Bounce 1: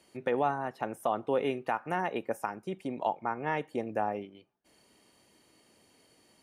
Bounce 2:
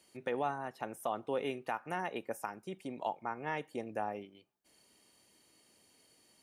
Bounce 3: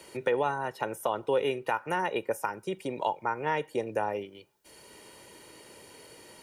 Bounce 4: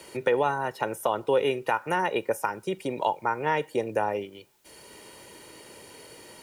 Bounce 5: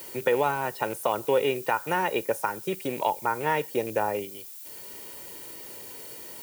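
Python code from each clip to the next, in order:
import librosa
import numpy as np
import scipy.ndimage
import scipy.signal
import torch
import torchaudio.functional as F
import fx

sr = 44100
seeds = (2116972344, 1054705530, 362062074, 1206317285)

y1 = fx.high_shelf(x, sr, hz=3100.0, db=8.0)
y1 = y1 * librosa.db_to_amplitude(-6.5)
y2 = y1 + 0.49 * np.pad(y1, (int(2.1 * sr / 1000.0), 0))[:len(y1)]
y2 = fx.band_squash(y2, sr, depth_pct=40)
y2 = y2 * librosa.db_to_amplitude(7.0)
y3 = fx.quant_dither(y2, sr, seeds[0], bits=12, dither='triangular')
y3 = y3 * librosa.db_to_amplitude(3.5)
y4 = fx.rattle_buzz(y3, sr, strikes_db=-38.0, level_db=-33.0)
y4 = fx.dmg_noise_colour(y4, sr, seeds[1], colour='violet', level_db=-43.0)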